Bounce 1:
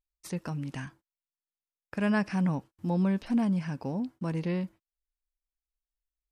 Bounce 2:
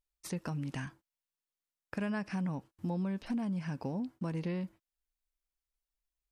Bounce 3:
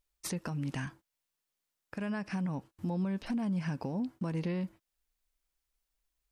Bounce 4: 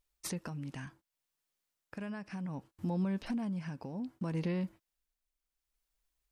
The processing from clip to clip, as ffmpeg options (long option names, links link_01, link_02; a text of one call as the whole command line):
ffmpeg -i in.wav -af "acompressor=threshold=-33dB:ratio=4" out.wav
ffmpeg -i in.wav -af "alimiter=level_in=8.5dB:limit=-24dB:level=0:latency=1:release=410,volume=-8.5dB,volume=6.5dB" out.wav
ffmpeg -i in.wav -af "tremolo=f=0.66:d=0.55" out.wav